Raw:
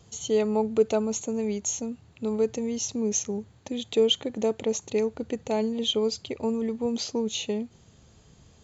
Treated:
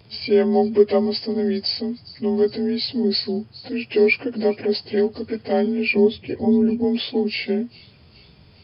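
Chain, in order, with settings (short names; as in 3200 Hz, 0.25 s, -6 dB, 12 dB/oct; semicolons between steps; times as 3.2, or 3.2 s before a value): inharmonic rescaling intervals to 89%; 5.97–6.84 tilt shelf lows +7 dB, about 650 Hz; thin delay 0.411 s, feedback 56%, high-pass 3900 Hz, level -16 dB; gain +7.5 dB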